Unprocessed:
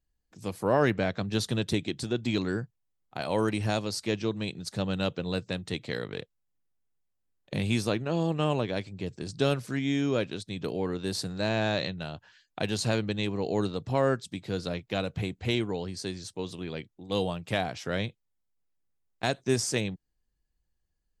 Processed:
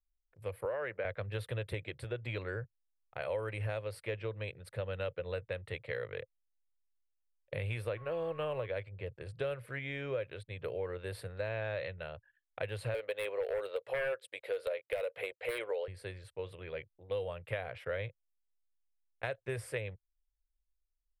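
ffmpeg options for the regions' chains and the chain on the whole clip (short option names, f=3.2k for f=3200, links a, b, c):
-filter_complex "[0:a]asettb=1/sr,asplit=3[a][b][c];[a]atrim=end=0.654[d];[b]atrim=start=0.65:end=1.05,asetpts=PTS-STARTPTS,afade=t=in:d=0.004:c=qsin,afade=t=out:st=0.396:d=0.004:c=qsin,acrossover=split=1500|3100[e][f][g];[e]acompressor=threshold=-27dB:ratio=4[h];[f]acompressor=threshold=-38dB:ratio=4[i];[g]acompressor=threshold=-59dB:ratio=4[j];[h][i][j]amix=inputs=3:normalize=0,highpass=200[k];[c]atrim=start=1.046[l];[d][k]acrossfade=d=0.004:c1=hsin:c2=qsin[m];[m][l]acrossfade=d=0.004:c1=qsin:c2=hsin,asettb=1/sr,asplit=3[n][o][p];[n]atrim=end=7.974[q];[o]atrim=start=7.97:end=8.66,asetpts=PTS-STARTPTS,afade=t=in:d=0.004:c=qsin,afade=t=out:st=0.686:d=0.004:c=qsin,aeval=exprs='val(0)+0.00708*sin(2*PI*1100*n/s)':c=same,aeval=exprs='sgn(val(0))*max(abs(val(0))-0.00398,0)':c=same[r];[p]atrim=start=8.656[s];[q][r]acrossfade=d=0.004:c1=hsin:c2=qsin[t];[t][s]acrossfade=d=0.004:c1=qsin:c2=hsin,asettb=1/sr,asplit=3[u][v][w];[u]atrim=end=12.944[x];[v]atrim=start=12.94:end=15.88,asetpts=PTS-STARTPTS,afade=t=in:d=0.004:c=qsin,afade=t=out:st=2.936:d=0.004:c=qsin,highpass=f=510:t=q:w=2.4,highshelf=f=2.1k:g=9.5,aeval=exprs='0.106*(abs(mod(val(0)/0.106+3,4)-2)-1)':c=same[y];[w]atrim=start=15.876[z];[x][y]acrossfade=d=0.004:c1=hsin:c2=qsin[aa];[aa][z]acrossfade=d=0.004:c1=qsin:c2=hsin,anlmdn=0.00251,firequalizer=gain_entry='entry(110,0);entry(180,-18);entry(260,-20);entry(520,6);entry(730,-7);entry(1400,-1);entry(2100,2);entry(3800,-13);entry(6300,-30);entry(9400,-7)':delay=0.05:min_phase=1,acompressor=threshold=-30dB:ratio=6,volume=-2.5dB"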